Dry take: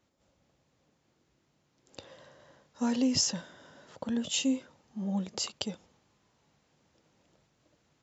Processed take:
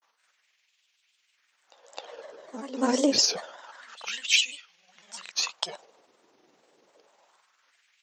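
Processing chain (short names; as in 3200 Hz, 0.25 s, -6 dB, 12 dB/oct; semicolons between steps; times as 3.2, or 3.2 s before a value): LFO high-pass sine 0.27 Hz 360–2800 Hz; reverse echo 0.261 s -14 dB; grains 89 ms, grains 20/s, spray 24 ms, pitch spread up and down by 3 st; gain +7.5 dB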